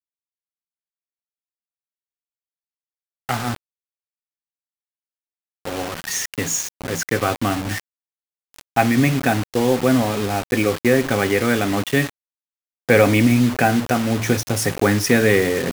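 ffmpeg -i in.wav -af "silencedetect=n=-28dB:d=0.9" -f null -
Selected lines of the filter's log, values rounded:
silence_start: 0.00
silence_end: 3.29 | silence_duration: 3.29
silence_start: 3.56
silence_end: 5.65 | silence_duration: 2.09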